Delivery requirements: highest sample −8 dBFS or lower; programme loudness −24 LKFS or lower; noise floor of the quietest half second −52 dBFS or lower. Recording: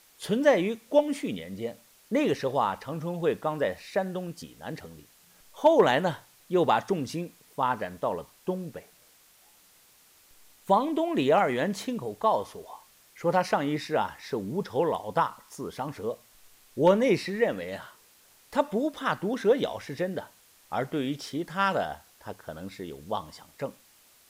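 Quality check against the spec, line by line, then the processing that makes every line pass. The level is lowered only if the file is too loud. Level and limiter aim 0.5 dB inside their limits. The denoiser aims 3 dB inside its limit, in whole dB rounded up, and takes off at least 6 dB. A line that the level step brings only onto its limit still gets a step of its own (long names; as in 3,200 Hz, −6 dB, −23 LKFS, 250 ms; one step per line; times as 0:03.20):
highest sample −10.0 dBFS: in spec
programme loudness −28.0 LKFS: in spec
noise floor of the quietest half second −59 dBFS: in spec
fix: no processing needed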